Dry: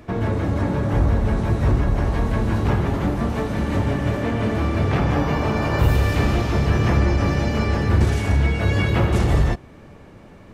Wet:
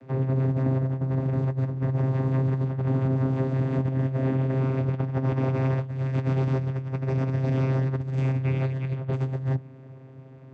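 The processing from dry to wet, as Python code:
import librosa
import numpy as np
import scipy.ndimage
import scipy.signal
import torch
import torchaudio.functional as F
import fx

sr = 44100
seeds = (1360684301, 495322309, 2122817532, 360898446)

y = fx.vocoder(x, sr, bands=16, carrier='saw', carrier_hz=132.0)
y = fx.over_compress(y, sr, threshold_db=-24.0, ratio=-0.5)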